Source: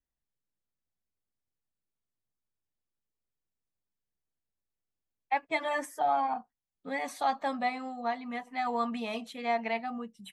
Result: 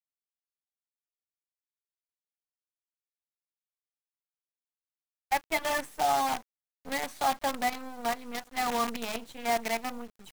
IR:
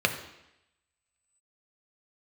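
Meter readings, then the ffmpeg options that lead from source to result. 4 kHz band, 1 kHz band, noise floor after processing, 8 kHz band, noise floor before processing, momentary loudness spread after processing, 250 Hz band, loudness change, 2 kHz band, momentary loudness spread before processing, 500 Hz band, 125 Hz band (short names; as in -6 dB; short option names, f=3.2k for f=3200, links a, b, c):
+7.0 dB, +1.0 dB, under -85 dBFS, +12.0 dB, under -85 dBFS, 8 LU, -1.0 dB, +1.5 dB, +2.0 dB, 7 LU, +1.0 dB, n/a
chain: -af "aresample=32000,aresample=44100,acrusher=bits=6:dc=4:mix=0:aa=0.000001,volume=1dB"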